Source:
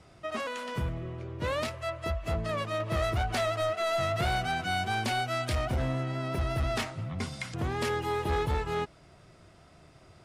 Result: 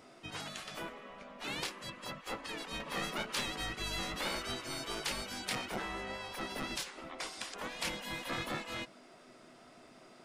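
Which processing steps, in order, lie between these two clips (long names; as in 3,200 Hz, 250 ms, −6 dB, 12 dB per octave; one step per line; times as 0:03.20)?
mains-hum notches 50/100/150/200/250 Hz
mains hum 50 Hz, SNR 13 dB
gate on every frequency bin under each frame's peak −15 dB weak
level +1 dB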